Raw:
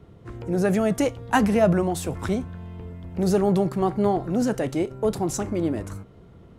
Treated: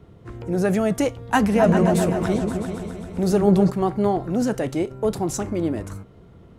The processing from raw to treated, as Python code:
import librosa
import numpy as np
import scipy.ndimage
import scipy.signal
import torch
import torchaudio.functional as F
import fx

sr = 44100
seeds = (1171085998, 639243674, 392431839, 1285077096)

y = fx.echo_opening(x, sr, ms=131, hz=400, octaves=2, feedback_pct=70, wet_db=-3, at=(1.55, 3.69), fade=0.02)
y = F.gain(torch.from_numpy(y), 1.0).numpy()